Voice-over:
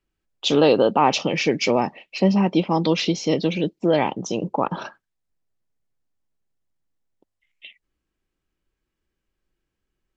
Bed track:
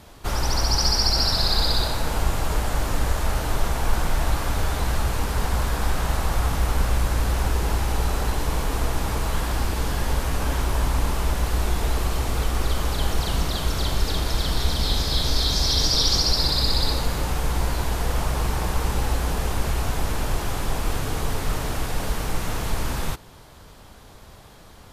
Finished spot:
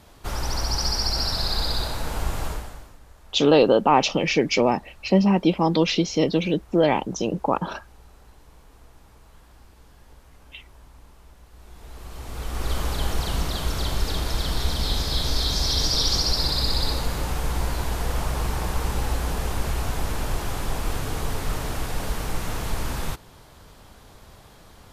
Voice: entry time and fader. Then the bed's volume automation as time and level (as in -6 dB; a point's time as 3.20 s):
2.90 s, 0.0 dB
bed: 2.47 s -4 dB
2.99 s -27 dB
11.50 s -27 dB
12.73 s -2 dB